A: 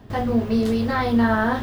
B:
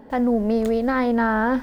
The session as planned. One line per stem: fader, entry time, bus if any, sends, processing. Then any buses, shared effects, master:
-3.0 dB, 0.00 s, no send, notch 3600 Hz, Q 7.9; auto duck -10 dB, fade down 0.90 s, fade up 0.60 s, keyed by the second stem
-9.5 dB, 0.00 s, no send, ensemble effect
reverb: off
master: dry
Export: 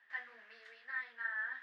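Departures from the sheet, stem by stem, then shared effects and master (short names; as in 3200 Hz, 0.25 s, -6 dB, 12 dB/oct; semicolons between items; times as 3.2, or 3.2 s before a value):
stem A: missing notch 3600 Hz, Q 7.9; master: extra ladder band-pass 1900 Hz, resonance 75%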